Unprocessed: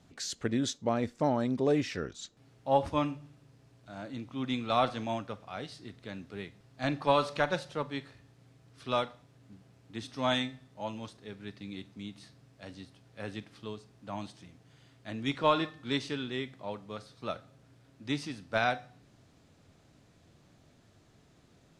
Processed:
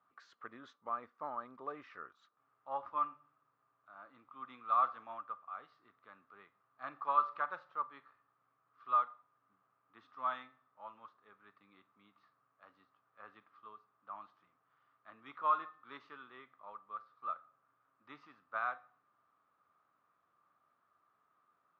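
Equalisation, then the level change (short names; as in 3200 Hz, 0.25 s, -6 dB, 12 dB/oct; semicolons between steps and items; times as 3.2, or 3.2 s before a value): band-pass 1200 Hz, Q 11; air absorption 130 m; +7.5 dB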